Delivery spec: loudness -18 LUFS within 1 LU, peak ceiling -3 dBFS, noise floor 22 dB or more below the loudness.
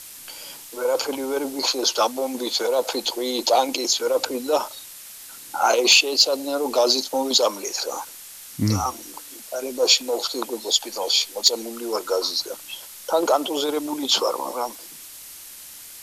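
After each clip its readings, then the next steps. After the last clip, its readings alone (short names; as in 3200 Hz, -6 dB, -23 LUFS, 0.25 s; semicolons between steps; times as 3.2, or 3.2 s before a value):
noise floor -41 dBFS; noise floor target -44 dBFS; loudness -21.5 LUFS; peak -5.0 dBFS; loudness target -18.0 LUFS
-> noise print and reduce 6 dB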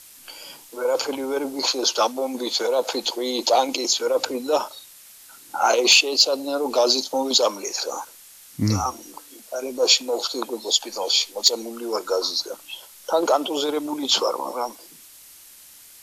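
noise floor -47 dBFS; loudness -21.5 LUFS; peak -4.5 dBFS; loudness target -18.0 LUFS
-> gain +3.5 dB; limiter -3 dBFS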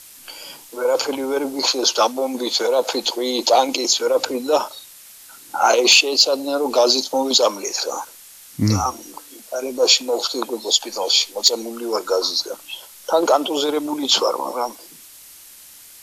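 loudness -18.5 LUFS; peak -3.0 dBFS; noise floor -44 dBFS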